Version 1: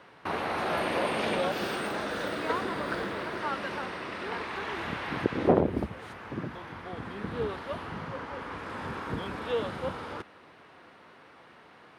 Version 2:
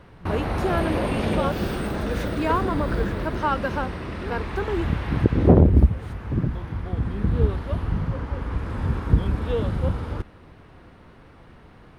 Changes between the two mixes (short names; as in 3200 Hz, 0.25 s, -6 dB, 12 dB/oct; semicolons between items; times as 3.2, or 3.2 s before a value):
speech +10.0 dB; master: remove weighting filter A